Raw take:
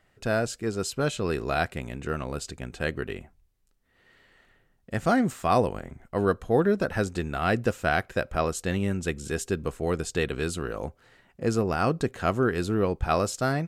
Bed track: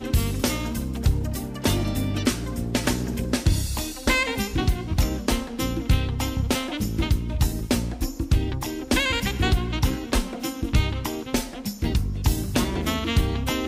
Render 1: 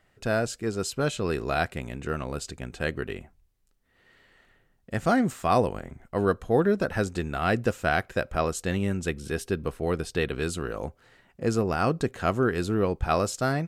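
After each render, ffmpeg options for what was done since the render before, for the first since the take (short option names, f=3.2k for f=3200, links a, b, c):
-filter_complex "[0:a]asettb=1/sr,asplit=3[a][b][c];[a]atrim=end=9.094[d];[b]atrim=start=9.09:end=10.42,asetpts=PTS-STARTPTS,afade=t=in:d=0.004:c=qsin,afade=t=out:st=1.326:d=0.004:c=qsin,equalizer=f=7.2k:w=3.5:g=-11[e];[c]atrim=start=10.416[f];[d][e]acrossfade=d=0.004:c1=hsin:c2=qsin[g];[g][f]acrossfade=d=0.004:c1=qsin:c2=hsin"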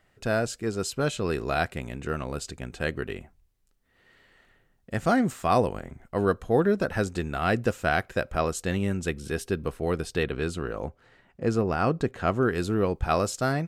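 -filter_complex "[0:a]asettb=1/sr,asplit=3[a][b][c];[a]atrim=end=10.234[d];[b]atrim=start=10.23:end=12.41,asetpts=PTS-STARTPTS,afade=t=in:d=0.004:c=qsin,afade=t=out:st=2.176:d=0.004:c=qsin,aemphasis=mode=reproduction:type=cd[e];[c]atrim=start=12.406[f];[d][e]acrossfade=d=0.004:c1=hsin:c2=qsin[g];[g][f]acrossfade=d=0.004:c1=qsin:c2=hsin"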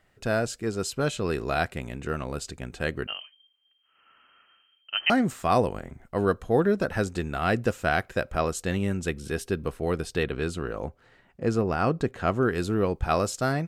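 -filter_complex "[0:a]asettb=1/sr,asplit=3[a][b][c];[a]atrim=end=3.074[d];[b]atrim=start=3.07:end=5.1,asetpts=PTS-STARTPTS,afade=t=in:d=0.004:c=qsin,afade=t=out:st=2.026:d=0.004:c=qsin,lowpass=f=2.7k:t=q:w=0.5098,lowpass=f=2.7k:t=q:w=0.6013,lowpass=f=2.7k:t=q:w=0.9,lowpass=f=2.7k:t=q:w=2.563,afreqshift=-3200[e];[c]atrim=start=5.096[f];[d][e]acrossfade=d=0.004:c1=hsin:c2=qsin[g];[g][f]acrossfade=d=0.004:c1=qsin:c2=hsin"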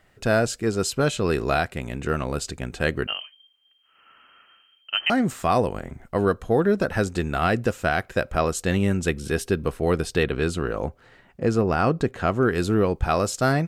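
-af "alimiter=limit=-15.5dB:level=0:latency=1:release=381,acontrast=38"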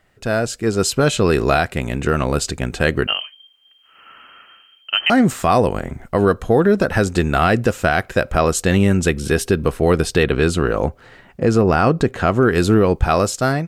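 -af "dynaudnorm=f=200:g=7:m=11.5dB,alimiter=limit=-5dB:level=0:latency=1:release=87"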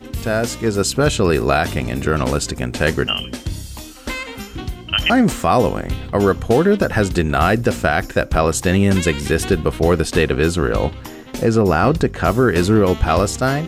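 -filter_complex "[1:a]volume=-5dB[a];[0:a][a]amix=inputs=2:normalize=0"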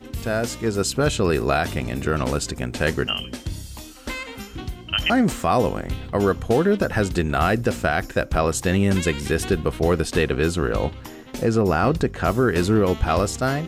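-af "volume=-4.5dB"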